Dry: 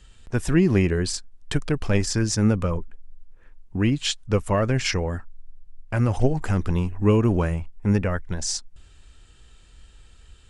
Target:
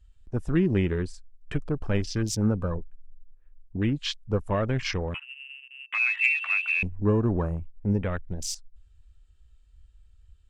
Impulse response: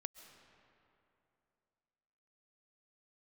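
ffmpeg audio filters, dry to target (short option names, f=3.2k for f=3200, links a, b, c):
-filter_complex "[0:a]asettb=1/sr,asplit=3[a][b][c];[a]atrim=end=5.144[d];[b]atrim=start=5.14:end=6.83,asetpts=PTS-STARTPTS,afade=t=in:d=0.004:c=qsin,afade=t=out:st=1.686:d=0.004:c=qsin,lowpass=f=2.3k:t=q:w=0.5098,lowpass=f=2.3k:t=q:w=0.6013,lowpass=f=2.3k:t=q:w=0.9,lowpass=f=2.3k:t=q:w=2.563,afreqshift=-2700[e];[c]atrim=start=6.826[f];[d][e]acrossfade=d=0.004:c1=hsin:c2=qsin[g];[g][f]acrossfade=d=0.004:c1=qsin:c2=hsin,asoftclip=type=hard:threshold=-9dB,afwtdn=0.0224,volume=-4.5dB"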